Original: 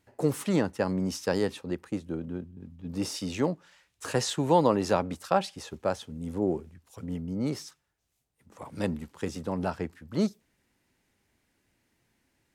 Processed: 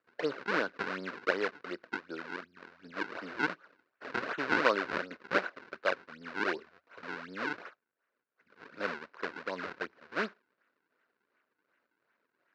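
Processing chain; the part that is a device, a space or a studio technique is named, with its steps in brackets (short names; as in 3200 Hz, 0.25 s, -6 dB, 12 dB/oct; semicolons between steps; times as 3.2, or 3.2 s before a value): circuit-bent sampling toy (decimation with a swept rate 42×, swing 160% 2.7 Hz; speaker cabinet 520–4100 Hz, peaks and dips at 810 Hz -8 dB, 1500 Hz +9 dB, 3300 Hz -8 dB)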